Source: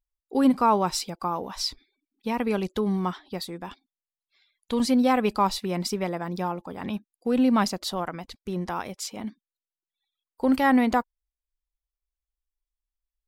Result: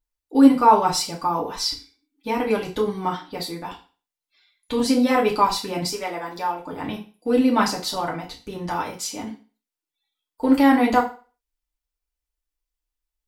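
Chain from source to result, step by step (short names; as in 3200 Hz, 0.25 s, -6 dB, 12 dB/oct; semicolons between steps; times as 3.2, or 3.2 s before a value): 5.82–6.65 bell 130 Hz -15 dB 2.1 oct; FDN reverb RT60 0.36 s, low-frequency decay 0.9×, high-frequency decay 1×, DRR -3 dB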